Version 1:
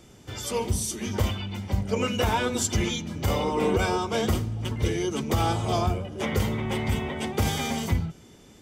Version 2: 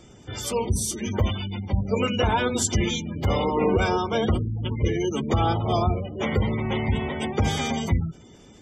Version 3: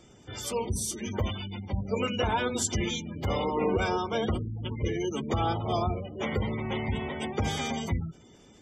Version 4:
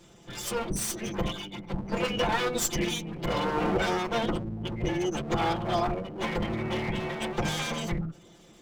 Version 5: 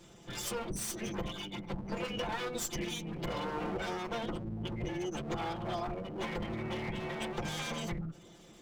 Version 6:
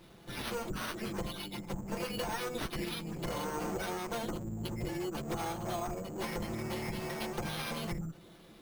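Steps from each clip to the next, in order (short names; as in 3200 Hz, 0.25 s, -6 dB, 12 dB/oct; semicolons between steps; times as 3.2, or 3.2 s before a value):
spectral gate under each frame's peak -25 dB strong; gain +2.5 dB
low shelf 190 Hz -3.5 dB; gain -4.5 dB
minimum comb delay 5.8 ms; gain +2.5 dB
compressor 4:1, threshold -33 dBFS, peak gain reduction 10 dB; gain -1.5 dB
careless resampling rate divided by 6×, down none, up hold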